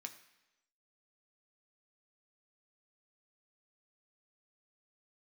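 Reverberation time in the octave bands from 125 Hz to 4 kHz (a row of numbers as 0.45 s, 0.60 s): 0.85 s, 0.95 s, 1.0 s, 0.95 s, 1.0 s, 1.0 s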